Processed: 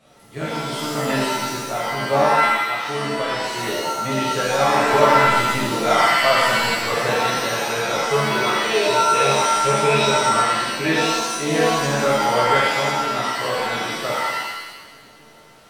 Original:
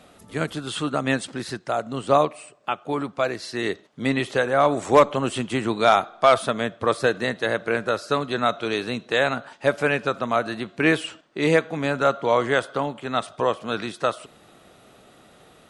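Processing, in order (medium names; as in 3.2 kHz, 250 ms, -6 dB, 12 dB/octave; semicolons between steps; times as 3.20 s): 7.97–10.09 s: rippled EQ curve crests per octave 0.77, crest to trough 16 dB; pitch-shifted reverb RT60 1.1 s, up +7 st, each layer -2 dB, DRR -8.5 dB; trim -9.5 dB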